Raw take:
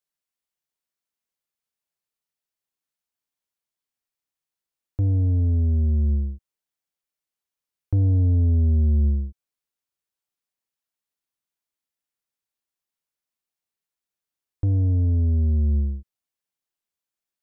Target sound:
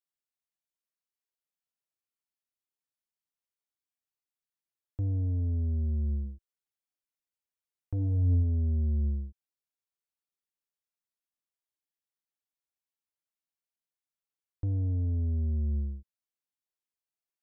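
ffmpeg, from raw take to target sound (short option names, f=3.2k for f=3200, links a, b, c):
-filter_complex "[0:a]asplit=3[a][b][c];[a]afade=t=out:st=6.24:d=0.02[d];[b]aphaser=in_gain=1:out_gain=1:delay=4.6:decay=0.37:speed=1.2:type=triangular,afade=t=in:st=6.24:d=0.02,afade=t=out:st=8.42:d=0.02[e];[c]afade=t=in:st=8.42:d=0.02[f];[d][e][f]amix=inputs=3:normalize=0,volume=-9dB"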